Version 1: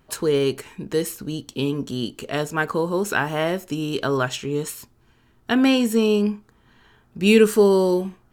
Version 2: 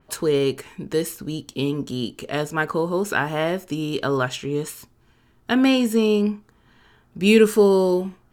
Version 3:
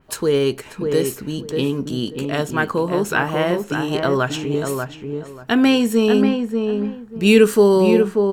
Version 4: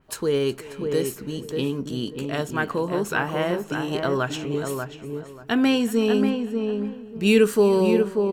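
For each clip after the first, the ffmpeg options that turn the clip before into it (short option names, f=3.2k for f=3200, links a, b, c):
-af "adynamicequalizer=threshold=0.00891:dfrequency=3800:dqfactor=0.7:tfrequency=3800:tqfactor=0.7:attack=5:release=100:ratio=0.375:range=1.5:mode=cutabove:tftype=highshelf"
-filter_complex "[0:a]asplit=2[a][b];[b]adelay=588,lowpass=f=1.5k:p=1,volume=-4.5dB,asplit=2[c][d];[d]adelay=588,lowpass=f=1.5k:p=1,volume=0.23,asplit=2[e][f];[f]adelay=588,lowpass=f=1.5k:p=1,volume=0.23[g];[a][c][e][g]amix=inputs=4:normalize=0,volume=2.5dB"
-af "aecho=1:1:368:0.112,volume=-5dB"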